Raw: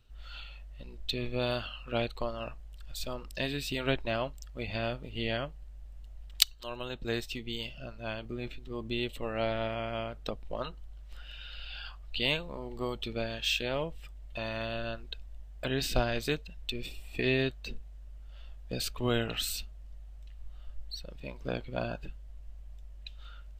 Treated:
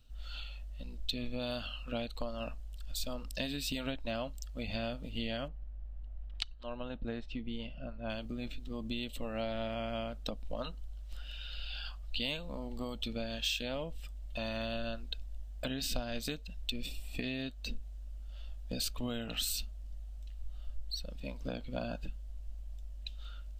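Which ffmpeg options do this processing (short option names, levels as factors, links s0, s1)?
-filter_complex "[0:a]asettb=1/sr,asplit=3[s0][s1][s2];[s0]atrim=end=5.484[s3];[s1]atrim=start=5.48:end=8.1,asetpts=PTS-STARTPTS,afade=t=in:d=0.004:c=qsin,afade=t=out:st=2.616:d=0.004:c=qsin,lowpass=1900[s4];[s2]atrim=start=8.096[s5];[s3][s4]acrossfade=d=0.004:c1=hsin:c2=qsin[s6];[s6][s5]acrossfade=d=0.004:c1=qsin:c2=hsin,equalizer=f=125:t=o:w=1:g=-8,equalizer=f=250:t=o:w=1:g=4,equalizer=f=1000:t=o:w=1:g=-6,equalizer=f=2000:t=o:w=1:g=-7,acompressor=threshold=0.02:ratio=6,equalizer=f=380:w=3.2:g=-14,volume=1.5"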